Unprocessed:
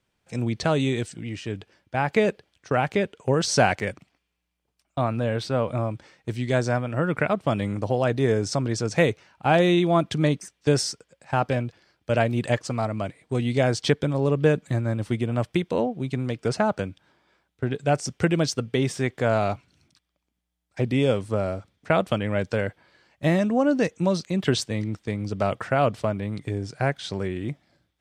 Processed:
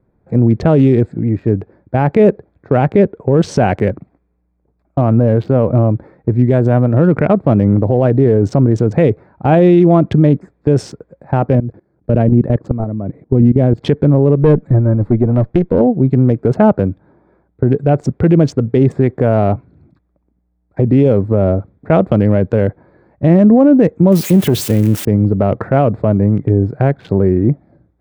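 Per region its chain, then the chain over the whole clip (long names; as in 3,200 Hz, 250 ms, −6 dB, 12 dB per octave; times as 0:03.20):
0:11.55–0:13.81: parametric band 190 Hz +8.5 dB 2.8 octaves + output level in coarse steps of 19 dB
0:14.35–0:15.81: upward compression, threshold −39 dBFS + tube saturation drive 17 dB, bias 0.55
0:24.12–0:25.05: spike at every zero crossing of −17 dBFS + high-shelf EQ 4,200 Hz +4 dB + saturating transformer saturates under 460 Hz
whole clip: adaptive Wiener filter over 15 samples; drawn EQ curve 400 Hz 0 dB, 1,200 Hz −10 dB, 2,700 Hz −13 dB, 4,900 Hz −22 dB; boost into a limiter +19 dB; level −1 dB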